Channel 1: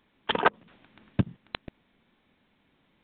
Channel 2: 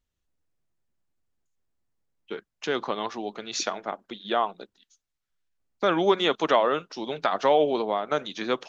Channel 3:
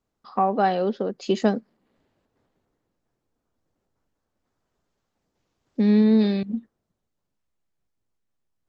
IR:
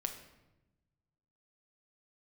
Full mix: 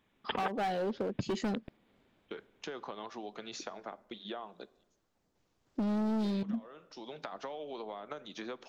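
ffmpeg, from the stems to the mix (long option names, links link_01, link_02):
-filter_complex "[0:a]volume=-5.5dB[link_01];[1:a]acrossover=split=440|1300[link_02][link_03][link_04];[link_02]acompressor=threshold=-35dB:ratio=4[link_05];[link_03]acompressor=threshold=-30dB:ratio=4[link_06];[link_04]acompressor=threshold=-39dB:ratio=4[link_07];[link_05][link_06][link_07]amix=inputs=3:normalize=0,agate=range=-14dB:threshold=-46dB:ratio=16:detection=peak,acompressor=threshold=-34dB:ratio=6,volume=-6.5dB,asplit=2[link_08][link_09];[link_09]volume=-11.5dB[link_10];[2:a]asoftclip=type=hard:threshold=-22dB,volume=-1.5dB,asplit=2[link_11][link_12];[link_12]apad=whole_len=383210[link_13];[link_08][link_13]sidechaincompress=threshold=-51dB:ratio=3:attack=16:release=407[link_14];[3:a]atrim=start_sample=2205[link_15];[link_10][link_15]afir=irnorm=-1:irlink=0[link_16];[link_01][link_14][link_11][link_16]amix=inputs=4:normalize=0,acompressor=threshold=-31dB:ratio=6"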